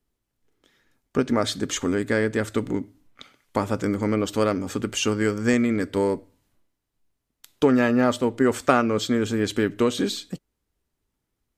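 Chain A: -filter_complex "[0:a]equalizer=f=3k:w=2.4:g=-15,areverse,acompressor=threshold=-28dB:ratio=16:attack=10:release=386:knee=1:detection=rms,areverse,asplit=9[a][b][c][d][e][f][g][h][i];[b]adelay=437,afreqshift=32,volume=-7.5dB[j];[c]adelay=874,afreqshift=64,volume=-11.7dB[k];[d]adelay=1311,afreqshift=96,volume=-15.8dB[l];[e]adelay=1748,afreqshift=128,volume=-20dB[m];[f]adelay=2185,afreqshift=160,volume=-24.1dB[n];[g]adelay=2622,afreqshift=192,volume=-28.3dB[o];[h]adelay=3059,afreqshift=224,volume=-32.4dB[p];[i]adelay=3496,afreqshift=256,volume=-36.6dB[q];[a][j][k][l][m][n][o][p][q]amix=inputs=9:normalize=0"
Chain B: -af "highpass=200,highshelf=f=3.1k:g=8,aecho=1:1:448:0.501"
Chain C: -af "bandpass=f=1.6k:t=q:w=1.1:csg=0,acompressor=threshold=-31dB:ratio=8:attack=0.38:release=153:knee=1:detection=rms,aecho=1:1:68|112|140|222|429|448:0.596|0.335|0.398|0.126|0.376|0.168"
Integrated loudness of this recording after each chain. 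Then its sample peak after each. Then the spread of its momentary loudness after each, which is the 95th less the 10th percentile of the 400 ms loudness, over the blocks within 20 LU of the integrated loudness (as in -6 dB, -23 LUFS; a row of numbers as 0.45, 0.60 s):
-35.0, -23.0, -39.5 LUFS; -19.5, -2.0, -24.5 dBFS; 11, 11, 10 LU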